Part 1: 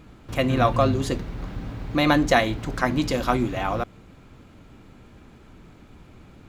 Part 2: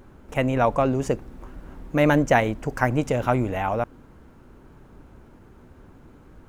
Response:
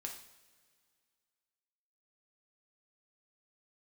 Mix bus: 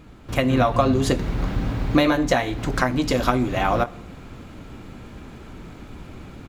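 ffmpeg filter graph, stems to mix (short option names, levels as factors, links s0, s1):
-filter_complex "[0:a]alimiter=limit=0.299:level=0:latency=1:release=450,volume=1,asplit=2[s0][s1];[s1]volume=0.266[s2];[1:a]adelay=19,volume=0.237,asplit=2[s3][s4];[s4]apad=whole_len=285859[s5];[s0][s5]sidechaincompress=threshold=0.0126:ratio=8:attack=35:release=174[s6];[2:a]atrim=start_sample=2205[s7];[s2][s7]afir=irnorm=-1:irlink=0[s8];[s6][s3][s8]amix=inputs=3:normalize=0,dynaudnorm=f=240:g=3:m=2.37"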